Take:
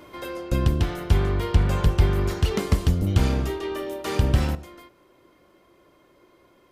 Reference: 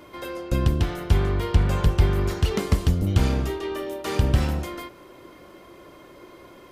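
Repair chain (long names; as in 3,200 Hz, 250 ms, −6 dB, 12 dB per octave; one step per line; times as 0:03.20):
level correction +11 dB, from 0:04.55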